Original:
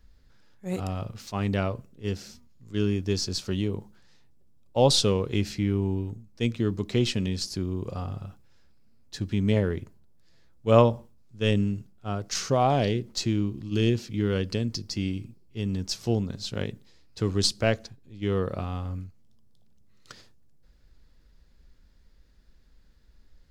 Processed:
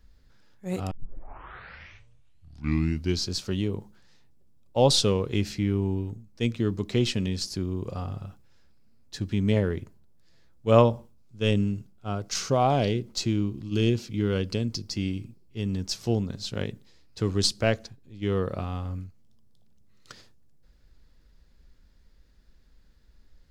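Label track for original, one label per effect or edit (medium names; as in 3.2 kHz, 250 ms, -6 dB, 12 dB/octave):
0.910000	0.910000	tape start 2.44 s
10.830000	14.910000	band-stop 1.8 kHz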